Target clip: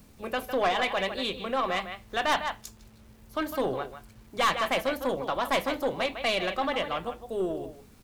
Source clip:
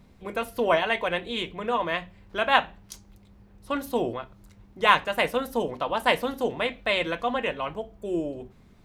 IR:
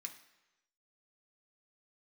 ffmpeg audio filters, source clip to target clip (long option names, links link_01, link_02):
-filter_complex "[0:a]acrossover=split=380|6000[link_01][link_02][link_03];[link_03]acompressor=mode=upward:threshold=-59dB:ratio=2.5[link_04];[link_01][link_02][link_04]amix=inputs=3:normalize=0,asplit=2[link_05][link_06];[link_06]adelay=170,highpass=300,lowpass=3400,asoftclip=type=hard:threshold=-12dB,volume=-10dB[link_07];[link_05][link_07]amix=inputs=2:normalize=0,acrusher=bits=9:mix=0:aa=0.000001,aeval=exprs='(tanh(8.91*val(0)+0.2)-tanh(0.2))/8.91':channel_layout=same,asetrate=48510,aresample=44100"